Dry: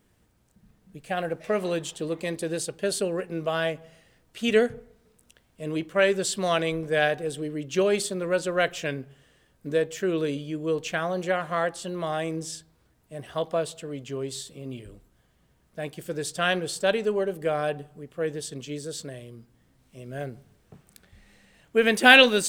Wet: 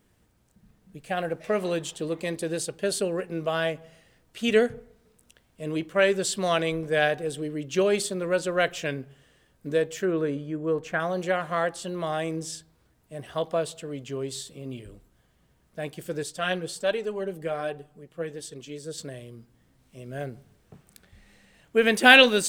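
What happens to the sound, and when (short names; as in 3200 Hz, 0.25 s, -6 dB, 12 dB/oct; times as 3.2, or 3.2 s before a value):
10.05–11 resonant high shelf 2200 Hz -9 dB, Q 1.5
16.23–18.98 flange 1.3 Hz, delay 2 ms, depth 4.6 ms, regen +43%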